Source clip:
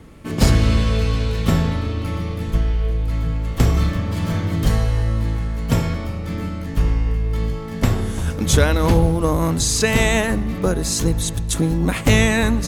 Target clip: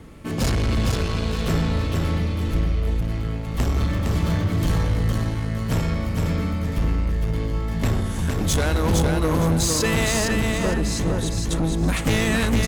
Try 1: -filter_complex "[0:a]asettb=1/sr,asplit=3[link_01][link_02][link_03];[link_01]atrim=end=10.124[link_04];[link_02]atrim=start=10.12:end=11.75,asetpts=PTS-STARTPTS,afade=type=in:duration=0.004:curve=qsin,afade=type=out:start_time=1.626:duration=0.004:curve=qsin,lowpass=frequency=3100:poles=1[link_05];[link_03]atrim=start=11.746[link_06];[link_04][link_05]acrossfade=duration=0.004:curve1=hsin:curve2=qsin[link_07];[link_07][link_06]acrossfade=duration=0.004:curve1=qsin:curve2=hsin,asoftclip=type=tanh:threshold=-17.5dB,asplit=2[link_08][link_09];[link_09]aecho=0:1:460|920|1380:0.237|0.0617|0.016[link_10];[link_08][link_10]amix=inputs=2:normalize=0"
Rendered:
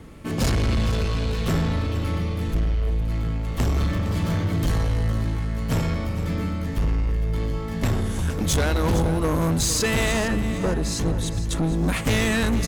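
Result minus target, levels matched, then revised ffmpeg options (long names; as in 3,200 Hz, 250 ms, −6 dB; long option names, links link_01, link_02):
echo-to-direct −9 dB
-filter_complex "[0:a]asettb=1/sr,asplit=3[link_01][link_02][link_03];[link_01]atrim=end=10.124[link_04];[link_02]atrim=start=10.12:end=11.75,asetpts=PTS-STARTPTS,afade=type=in:duration=0.004:curve=qsin,afade=type=out:start_time=1.626:duration=0.004:curve=qsin,lowpass=frequency=3100:poles=1[link_05];[link_03]atrim=start=11.746[link_06];[link_04][link_05]acrossfade=duration=0.004:curve1=hsin:curve2=qsin[link_07];[link_07][link_06]acrossfade=duration=0.004:curve1=qsin:curve2=hsin,asoftclip=type=tanh:threshold=-17.5dB,asplit=2[link_08][link_09];[link_09]aecho=0:1:460|920|1380|1840:0.668|0.174|0.0452|0.0117[link_10];[link_08][link_10]amix=inputs=2:normalize=0"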